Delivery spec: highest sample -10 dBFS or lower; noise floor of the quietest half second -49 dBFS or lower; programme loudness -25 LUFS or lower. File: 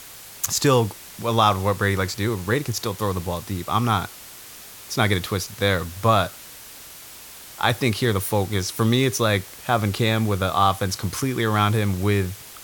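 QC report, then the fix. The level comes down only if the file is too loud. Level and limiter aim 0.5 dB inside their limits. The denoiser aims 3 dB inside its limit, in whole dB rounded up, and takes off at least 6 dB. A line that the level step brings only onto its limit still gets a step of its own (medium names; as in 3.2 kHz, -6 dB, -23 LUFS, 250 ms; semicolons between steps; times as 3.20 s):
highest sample -4.0 dBFS: fail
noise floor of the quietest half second -42 dBFS: fail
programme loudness -22.5 LUFS: fail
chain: noise reduction 7 dB, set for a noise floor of -42 dBFS; trim -3 dB; peak limiter -10.5 dBFS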